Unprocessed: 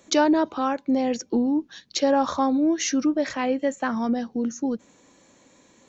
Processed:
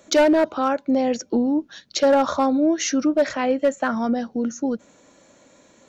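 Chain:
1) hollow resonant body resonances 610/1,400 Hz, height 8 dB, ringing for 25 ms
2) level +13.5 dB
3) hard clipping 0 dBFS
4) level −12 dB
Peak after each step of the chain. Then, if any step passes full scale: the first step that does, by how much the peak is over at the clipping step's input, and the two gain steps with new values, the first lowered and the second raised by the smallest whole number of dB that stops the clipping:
−4.5, +9.0, 0.0, −12.0 dBFS
step 2, 9.0 dB
step 2 +4.5 dB, step 4 −3 dB

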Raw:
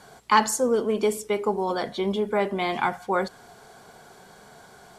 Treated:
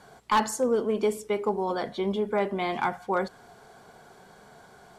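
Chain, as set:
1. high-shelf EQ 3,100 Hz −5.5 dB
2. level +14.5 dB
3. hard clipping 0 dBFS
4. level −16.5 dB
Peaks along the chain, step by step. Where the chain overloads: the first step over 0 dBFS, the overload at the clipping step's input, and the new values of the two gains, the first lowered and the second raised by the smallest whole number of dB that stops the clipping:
−5.0, +9.5, 0.0, −16.5 dBFS
step 2, 9.5 dB
step 2 +4.5 dB, step 4 −6.5 dB

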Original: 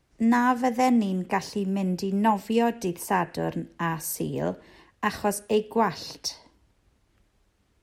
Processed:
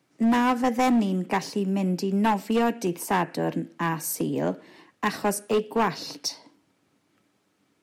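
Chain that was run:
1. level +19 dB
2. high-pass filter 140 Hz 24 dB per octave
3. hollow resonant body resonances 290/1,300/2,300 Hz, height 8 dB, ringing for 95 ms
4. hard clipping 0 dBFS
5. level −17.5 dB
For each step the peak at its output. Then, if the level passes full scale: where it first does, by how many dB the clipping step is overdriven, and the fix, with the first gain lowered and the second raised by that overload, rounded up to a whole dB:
+9.0, +9.5, +9.5, 0.0, −17.5 dBFS
step 1, 9.5 dB
step 1 +9 dB, step 5 −7.5 dB

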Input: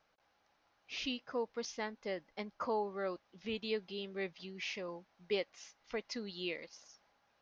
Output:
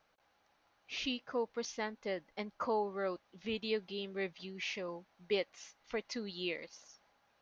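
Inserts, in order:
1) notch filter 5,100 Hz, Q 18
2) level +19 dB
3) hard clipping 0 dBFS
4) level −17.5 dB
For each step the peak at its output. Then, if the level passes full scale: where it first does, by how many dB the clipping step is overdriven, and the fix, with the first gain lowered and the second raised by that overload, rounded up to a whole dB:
−23.5, −4.5, −4.5, −22.0 dBFS
no step passes full scale

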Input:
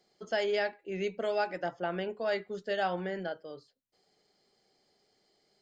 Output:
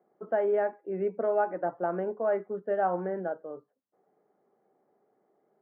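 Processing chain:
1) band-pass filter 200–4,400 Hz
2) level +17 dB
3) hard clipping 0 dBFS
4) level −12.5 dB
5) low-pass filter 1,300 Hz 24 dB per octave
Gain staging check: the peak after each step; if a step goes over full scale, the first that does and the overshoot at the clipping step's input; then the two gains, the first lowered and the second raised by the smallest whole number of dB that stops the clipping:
−19.5, −2.5, −2.5, −15.0, −16.5 dBFS
no step passes full scale

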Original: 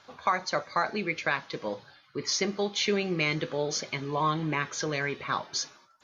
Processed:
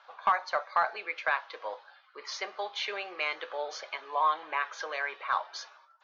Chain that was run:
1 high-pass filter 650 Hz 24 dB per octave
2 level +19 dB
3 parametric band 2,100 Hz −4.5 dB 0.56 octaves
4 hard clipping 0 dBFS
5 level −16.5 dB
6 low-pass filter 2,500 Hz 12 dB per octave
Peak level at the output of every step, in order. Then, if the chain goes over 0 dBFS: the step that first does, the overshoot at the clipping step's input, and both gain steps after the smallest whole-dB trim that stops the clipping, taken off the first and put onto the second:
−14.0, +5.0, +4.5, 0.0, −16.5, −16.0 dBFS
step 2, 4.5 dB
step 2 +14 dB, step 5 −11.5 dB

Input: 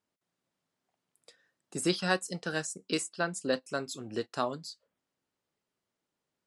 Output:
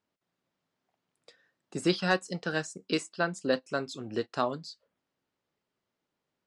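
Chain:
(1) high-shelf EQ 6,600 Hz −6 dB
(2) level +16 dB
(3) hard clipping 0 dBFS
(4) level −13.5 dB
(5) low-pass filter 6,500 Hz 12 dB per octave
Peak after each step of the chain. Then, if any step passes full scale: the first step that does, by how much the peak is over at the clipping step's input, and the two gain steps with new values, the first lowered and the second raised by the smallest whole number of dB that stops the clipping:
−12.5, +3.5, 0.0, −13.5, −13.0 dBFS
step 2, 3.5 dB
step 2 +12 dB, step 4 −9.5 dB

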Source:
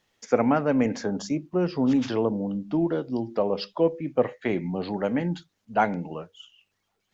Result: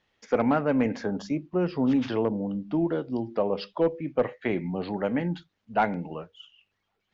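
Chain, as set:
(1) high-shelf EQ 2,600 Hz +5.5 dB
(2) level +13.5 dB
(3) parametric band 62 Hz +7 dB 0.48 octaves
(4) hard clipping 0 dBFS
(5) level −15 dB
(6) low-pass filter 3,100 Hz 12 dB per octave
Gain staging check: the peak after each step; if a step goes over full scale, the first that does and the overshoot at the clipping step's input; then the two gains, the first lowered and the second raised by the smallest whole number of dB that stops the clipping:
−6.5, +7.0, +7.0, 0.0, −15.0, −14.5 dBFS
step 2, 7.0 dB
step 2 +6.5 dB, step 5 −8 dB

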